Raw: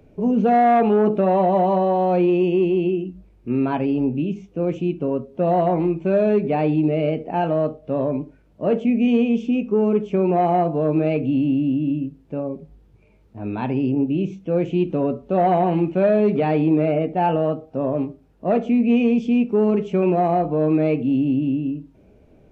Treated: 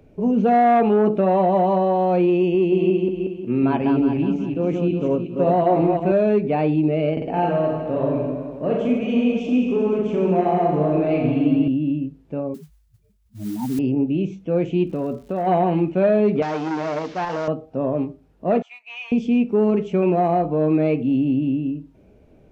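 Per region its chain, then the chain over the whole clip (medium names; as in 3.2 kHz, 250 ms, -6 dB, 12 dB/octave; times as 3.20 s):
2.54–6.12 s: backward echo that repeats 182 ms, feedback 52%, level -4 dB + high-pass 57 Hz
7.13–11.68 s: compression 2.5:1, threshold -20 dBFS + reverse bouncing-ball echo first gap 40 ms, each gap 1.2×, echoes 9, each echo -2 dB
12.54–13.79 s: spectral contrast enhancement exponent 3.2 + high-pass 75 Hz + modulation noise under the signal 19 dB
14.86–15.46 s: compression 3:1, threshold -21 dBFS + crackle 220 per s -43 dBFS
16.42–17.48 s: one-bit delta coder 32 kbps, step -34 dBFS + bass shelf 260 Hz -9.5 dB + transformer saturation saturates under 820 Hz
18.62–19.12 s: elliptic high-pass 870 Hz, stop band 60 dB + gate -42 dBFS, range -13 dB + tape noise reduction on one side only encoder only
whole clip: none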